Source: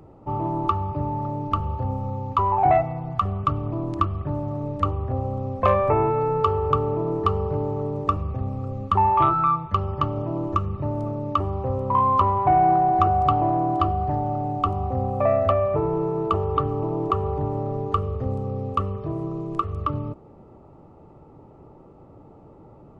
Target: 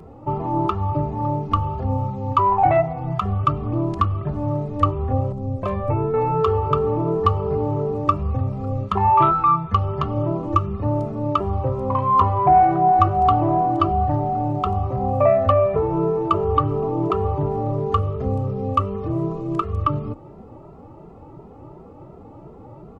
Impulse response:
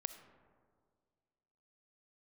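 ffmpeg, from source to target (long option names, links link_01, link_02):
-filter_complex "[0:a]asettb=1/sr,asplit=3[link_01][link_02][link_03];[link_01]atrim=end=5.324[link_04];[link_02]atrim=start=5.32:end=6.14,asetpts=PTS-STARTPTS,afade=type=in:duration=0.004:curve=qsin,afade=type=out:start_time=0.816:duration=0.004:curve=qsin,equalizer=frequency=1500:width=0.34:gain=-12.5[link_05];[link_03]atrim=start=6.136[link_06];[link_04][link_05]acrossfade=duration=0.004:curve1=hsin:curve2=qsin[link_07];[link_07][link_06]acrossfade=duration=0.004:curve1=qsin:curve2=hsin,asplit=2[link_08][link_09];[link_09]acompressor=threshold=-30dB:ratio=6,volume=-1.5dB[link_10];[link_08][link_10]amix=inputs=2:normalize=0,asplit=2[link_11][link_12];[link_12]adelay=2.5,afreqshift=2.8[link_13];[link_11][link_13]amix=inputs=2:normalize=1,volume=4dB"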